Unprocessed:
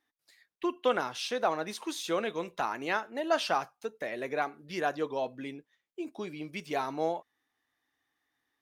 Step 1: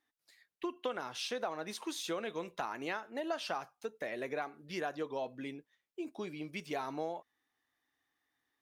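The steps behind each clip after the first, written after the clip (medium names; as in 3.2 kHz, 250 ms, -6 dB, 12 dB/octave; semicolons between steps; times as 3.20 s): compression 5:1, threshold -31 dBFS, peak gain reduction 9.5 dB; trim -2.5 dB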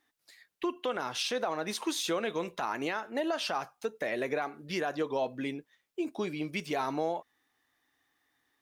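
peak limiter -28.5 dBFS, peak gain reduction 7 dB; trim +7.5 dB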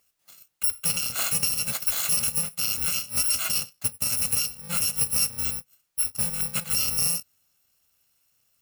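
bit-reversed sample order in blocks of 128 samples; trim +7 dB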